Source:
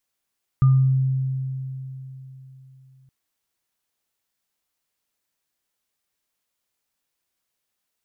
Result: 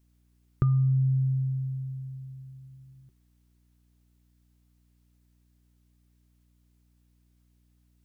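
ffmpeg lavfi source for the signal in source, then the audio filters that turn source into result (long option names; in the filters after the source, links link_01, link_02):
-f lavfi -i "aevalsrc='0.282*pow(10,-3*t/3.64)*sin(2*PI*132*t)+0.0376*pow(10,-3*t/0.45)*sin(2*PI*1210*t)':duration=2.47:sample_rate=44100"
-af "equalizer=frequency=370:width=5.4:gain=14,acompressor=threshold=-21dB:ratio=6,aeval=exprs='val(0)+0.000631*(sin(2*PI*60*n/s)+sin(2*PI*2*60*n/s)/2+sin(2*PI*3*60*n/s)/3+sin(2*PI*4*60*n/s)/4+sin(2*PI*5*60*n/s)/5)':channel_layout=same"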